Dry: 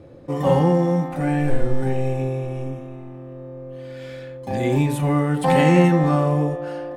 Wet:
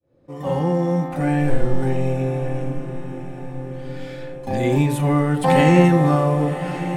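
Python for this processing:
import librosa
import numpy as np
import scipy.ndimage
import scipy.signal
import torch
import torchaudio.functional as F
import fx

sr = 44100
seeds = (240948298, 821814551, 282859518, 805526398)

y = fx.fade_in_head(x, sr, length_s=1.16)
y = fx.echo_diffused(y, sr, ms=1148, feedback_pct=52, wet_db=-11.5)
y = y * 10.0 ** (1.5 / 20.0)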